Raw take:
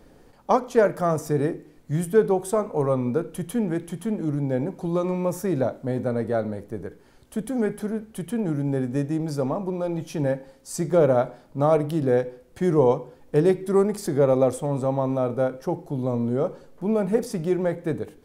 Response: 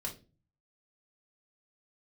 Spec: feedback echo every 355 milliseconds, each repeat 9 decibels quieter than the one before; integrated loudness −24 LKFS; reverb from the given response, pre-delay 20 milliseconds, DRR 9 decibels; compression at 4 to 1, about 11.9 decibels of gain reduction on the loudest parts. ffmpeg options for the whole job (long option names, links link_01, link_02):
-filter_complex "[0:a]acompressor=threshold=-28dB:ratio=4,aecho=1:1:355|710|1065|1420:0.355|0.124|0.0435|0.0152,asplit=2[link_01][link_02];[1:a]atrim=start_sample=2205,adelay=20[link_03];[link_02][link_03]afir=irnorm=-1:irlink=0,volume=-9dB[link_04];[link_01][link_04]amix=inputs=2:normalize=0,volume=7dB"